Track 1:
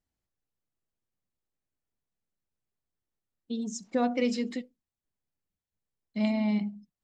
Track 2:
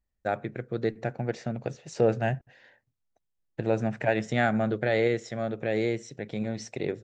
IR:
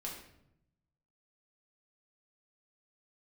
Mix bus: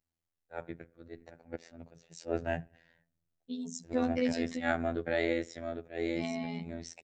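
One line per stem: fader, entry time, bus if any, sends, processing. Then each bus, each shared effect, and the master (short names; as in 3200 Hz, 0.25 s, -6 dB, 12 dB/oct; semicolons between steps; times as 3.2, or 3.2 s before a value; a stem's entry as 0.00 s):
-2.0 dB, 0.00 s, no send, dry
-4.0 dB, 0.25 s, send -23.5 dB, auto swell 0.112 s; three-band expander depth 40%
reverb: on, RT60 0.80 s, pre-delay 5 ms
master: robotiser 83.7 Hz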